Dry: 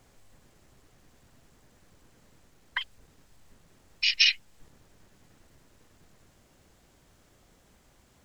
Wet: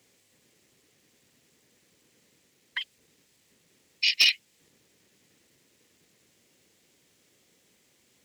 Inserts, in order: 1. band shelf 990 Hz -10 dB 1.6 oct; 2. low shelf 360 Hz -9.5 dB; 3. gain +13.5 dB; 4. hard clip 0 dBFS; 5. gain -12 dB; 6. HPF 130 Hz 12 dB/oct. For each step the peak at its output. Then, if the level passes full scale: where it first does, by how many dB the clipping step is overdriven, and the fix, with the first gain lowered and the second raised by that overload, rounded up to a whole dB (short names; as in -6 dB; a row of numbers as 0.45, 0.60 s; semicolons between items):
-8.0, -8.0, +5.5, 0.0, -12.0, -11.5 dBFS; step 3, 5.5 dB; step 3 +7.5 dB, step 5 -6 dB